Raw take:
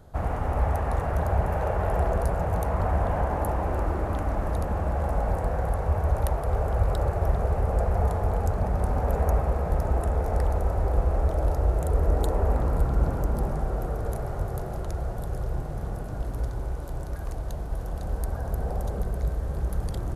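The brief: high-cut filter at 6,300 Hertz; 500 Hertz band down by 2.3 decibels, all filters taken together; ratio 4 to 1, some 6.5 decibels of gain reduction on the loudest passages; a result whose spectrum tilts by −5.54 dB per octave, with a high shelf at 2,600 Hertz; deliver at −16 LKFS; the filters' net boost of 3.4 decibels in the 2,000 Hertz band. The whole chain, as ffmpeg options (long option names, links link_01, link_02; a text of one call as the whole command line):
ffmpeg -i in.wav -af "lowpass=6300,equalizer=frequency=500:width_type=o:gain=-3,equalizer=frequency=2000:width_type=o:gain=8.5,highshelf=frequency=2600:gain=-9,acompressor=threshold=-26dB:ratio=4,volume=16.5dB" out.wav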